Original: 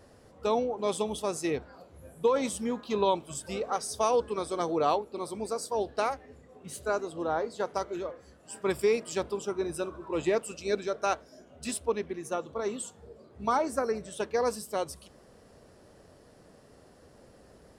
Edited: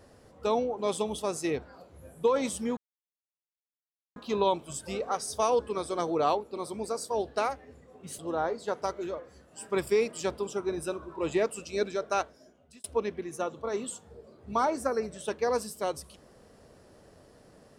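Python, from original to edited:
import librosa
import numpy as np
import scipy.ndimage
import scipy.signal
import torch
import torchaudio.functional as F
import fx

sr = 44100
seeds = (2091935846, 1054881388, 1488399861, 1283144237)

y = fx.edit(x, sr, fx.insert_silence(at_s=2.77, length_s=1.39),
    fx.cut(start_s=6.8, length_s=0.31),
    fx.fade_out_span(start_s=11.08, length_s=0.68), tone=tone)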